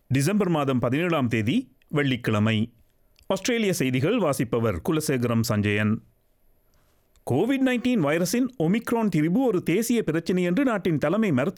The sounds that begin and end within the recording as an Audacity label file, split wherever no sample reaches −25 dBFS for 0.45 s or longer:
3.300000	5.950000	sound